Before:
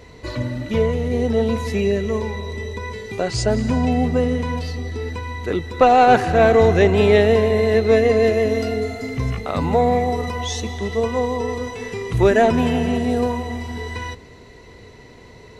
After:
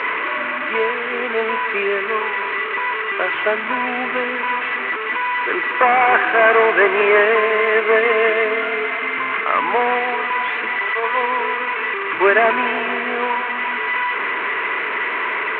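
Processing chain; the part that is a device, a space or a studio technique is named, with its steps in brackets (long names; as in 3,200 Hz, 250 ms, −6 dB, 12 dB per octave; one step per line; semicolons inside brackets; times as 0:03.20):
0:10.78–0:11.21: high-pass filter 920 Hz → 250 Hz 12 dB per octave
digital answering machine (band-pass filter 340–3,200 Hz; linear delta modulator 16 kbit/s, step −23.5 dBFS; loudspeaker in its box 460–3,900 Hz, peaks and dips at 510 Hz −8 dB, 750 Hz −8 dB, 1,100 Hz +7 dB, 1,600 Hz +6 dB, 2,300 Hz +6 dB, 3,400 Hz −5 dB)
level +7 dB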